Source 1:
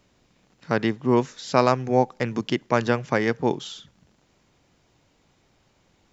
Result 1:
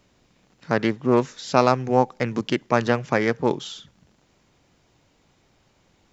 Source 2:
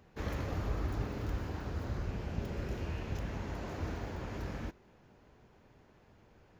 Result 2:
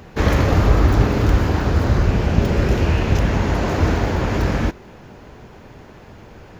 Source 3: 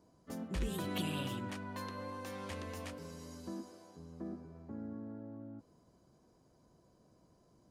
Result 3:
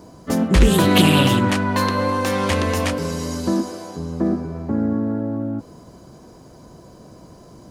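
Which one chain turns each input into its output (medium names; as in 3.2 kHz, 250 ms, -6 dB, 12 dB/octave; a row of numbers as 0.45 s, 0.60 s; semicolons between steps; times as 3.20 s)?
loudspeaker Doppler distortion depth 0.18 ms; peak normalisation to -1.5 dBFS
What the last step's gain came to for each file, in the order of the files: +1.5 dB, +21.0 dB, +23.5 dB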